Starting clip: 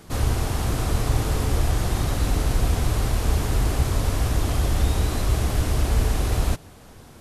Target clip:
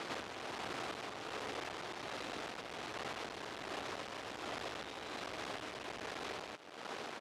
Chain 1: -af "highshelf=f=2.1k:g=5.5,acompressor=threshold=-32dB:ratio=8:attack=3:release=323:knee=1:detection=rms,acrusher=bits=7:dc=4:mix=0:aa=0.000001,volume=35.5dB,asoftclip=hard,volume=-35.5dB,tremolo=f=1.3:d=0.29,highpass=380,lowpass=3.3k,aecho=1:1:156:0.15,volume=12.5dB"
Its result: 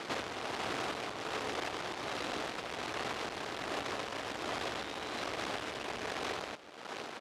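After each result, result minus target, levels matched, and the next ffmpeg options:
echo-to-direct +12 dB; overloaded stage: distortion -5 dB
-af "highshelf=f=2.1k:g=5.5,acompressor=threshold=-32dB:ratio=8:attack=3:release=323:knee=1:detection=rms,acrusher=bits=7:dc=4:mix=0:aa=0.000001,volume=35.5dB,asoftclip=hard,volume=-35.5dB,tremolo=f=1.3:d=0.29,highpass=380,lowpass=3.3k,aecho=1:1:156:0.0376,volume=12.5dB"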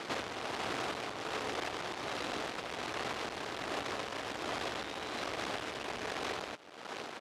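overloaded stage: distortion -5 dB
-af "highshelf=f=2.1k:g=5.5,acompressor=threshold=-32dB:ratio=8:attack=3:release=323:knee=1:detection=rms,acrusher=bits=7:dc=4:mix=0:aa=0.000001,volume=42dB,asoftclip=hard,volume=-42dB,tremolo=f=1.3:d=0.29,highpass=380,lowpass=3.3k,aecho=1:1:156:0.0376,volume=12.5dB"

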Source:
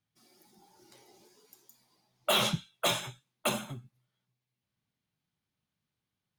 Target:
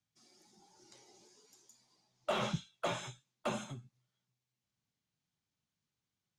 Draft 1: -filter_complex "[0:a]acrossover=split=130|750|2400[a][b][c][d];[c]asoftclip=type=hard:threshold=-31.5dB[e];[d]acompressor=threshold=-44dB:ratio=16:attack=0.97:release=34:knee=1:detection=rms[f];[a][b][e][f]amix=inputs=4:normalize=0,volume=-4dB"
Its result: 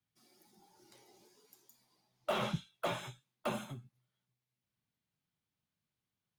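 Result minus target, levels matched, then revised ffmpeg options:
8000 Hz band -4.0 dB
-filter_complex "[0:a]acrossover=split=130|750|2400[a][b][c][d];[c]asoftclip=type=hard:threshold=-31.5dB[e];[d]acompressor=threshold=-44dB:ratio=16:attack=0.97:release=34:knee=1:detection=rms,lowpass=f=6.8k:t=q:w=2.2[f];[a][b][e][f]amix=inputs=4:normalize=0,volume=-4dB"

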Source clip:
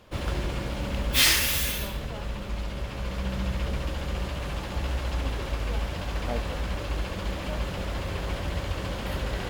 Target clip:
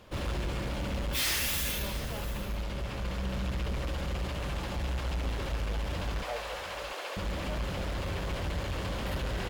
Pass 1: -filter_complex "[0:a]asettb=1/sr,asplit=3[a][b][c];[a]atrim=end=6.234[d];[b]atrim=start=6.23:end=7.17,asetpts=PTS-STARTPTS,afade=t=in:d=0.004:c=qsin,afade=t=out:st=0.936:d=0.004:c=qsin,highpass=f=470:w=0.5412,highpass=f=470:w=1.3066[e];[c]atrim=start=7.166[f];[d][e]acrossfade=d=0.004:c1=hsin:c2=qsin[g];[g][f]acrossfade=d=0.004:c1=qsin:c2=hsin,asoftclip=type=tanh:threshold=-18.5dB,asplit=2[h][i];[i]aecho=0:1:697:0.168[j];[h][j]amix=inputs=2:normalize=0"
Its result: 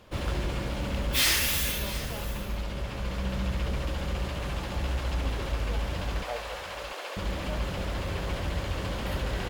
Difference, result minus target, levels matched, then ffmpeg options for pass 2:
soft clip: distortion -7 dB
-filter_complex "[0:a]asettb=1/sr,asplit=3[a][b][c];[a]atrim=end=6.234[d];[b]atrim=start=6.23:end=7.17,asetpts=PTS-STARTPTS,afade=t=in:d=0.004:c=qsin,afade=t=out:st=0.936:d=0.004:c=qsin,highpass=f=470:w=0.5412,highpass=f=470:w=1.3066[e];[c]atrim=start=7.166[f];[d][e]acrossfade=d=0.004:c1=hsin:c2=qsin[g];[g][f]acrossfade=d=0.004:c1=qsin:c2=hsin,asoftclip=type=tanh:threshold=-27.5dB,asplit=2[h][i];[i]aecho=0:1:697:0.168[j];[h][j]amix=inputs=2:normalize=0"

